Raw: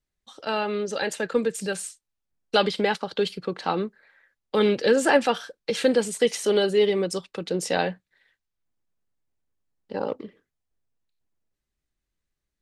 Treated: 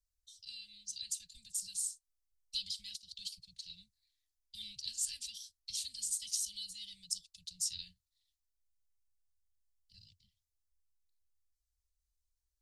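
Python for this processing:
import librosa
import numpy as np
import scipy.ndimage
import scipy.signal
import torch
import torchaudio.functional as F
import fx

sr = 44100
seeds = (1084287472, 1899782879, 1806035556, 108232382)

y = scipy.signal.sosfilt(scipy.signal.cheby2(4, 70, [290.0, 1300.0], 'bandstop', fs=sr, output='sos'), x)
y = y * 10.0 ** (-1.5 / 20.0)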